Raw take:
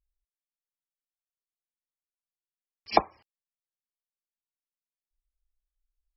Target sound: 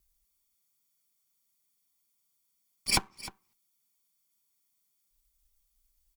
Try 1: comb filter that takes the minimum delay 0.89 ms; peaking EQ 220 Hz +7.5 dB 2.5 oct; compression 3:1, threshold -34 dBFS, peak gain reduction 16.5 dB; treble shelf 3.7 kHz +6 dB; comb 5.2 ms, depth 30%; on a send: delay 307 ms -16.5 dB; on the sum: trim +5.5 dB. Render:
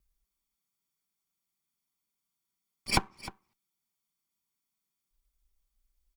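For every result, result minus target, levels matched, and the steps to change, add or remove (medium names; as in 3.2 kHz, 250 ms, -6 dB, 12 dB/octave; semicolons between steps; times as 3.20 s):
8 kHz band -5.0 dB; compression: peak gain reduction -4 dB
change: treble shelf 3.7 kHz +17 dB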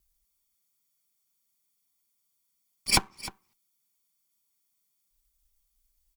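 compression: peak gain reduction -4 dB
change: compression 3:1, threshold -40 dBFS, peak gain reduction 20.5 dB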